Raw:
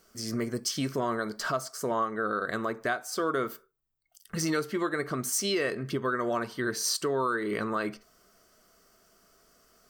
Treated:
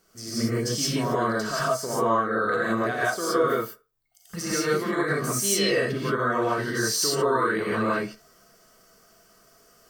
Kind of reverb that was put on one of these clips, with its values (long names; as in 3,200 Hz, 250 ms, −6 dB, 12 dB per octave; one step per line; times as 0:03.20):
reverb whose tail is shaped and stops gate 200 ms rising, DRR −8 dB
level −3 dB